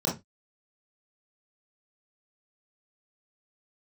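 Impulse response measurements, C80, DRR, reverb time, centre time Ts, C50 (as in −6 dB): 19.0 dB, −6.0 dB, 0.20 s, 29 ms, 8.0 dB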